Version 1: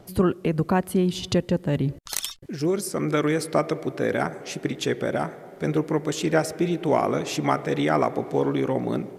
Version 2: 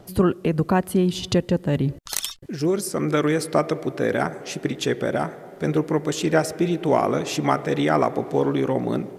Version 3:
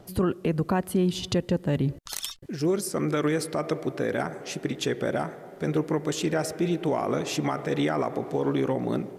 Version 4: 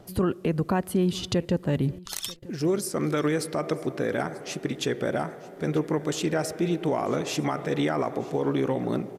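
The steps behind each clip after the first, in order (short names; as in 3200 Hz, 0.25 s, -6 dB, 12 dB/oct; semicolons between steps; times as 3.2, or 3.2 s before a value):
notch 2200 Hz, Q 26; gain +2 dB
limiter -12.5 dBFS, peak gain reduction 8 dB; gain -3 dB
feedback echo 0.939 s, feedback 17%, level -21.5 dB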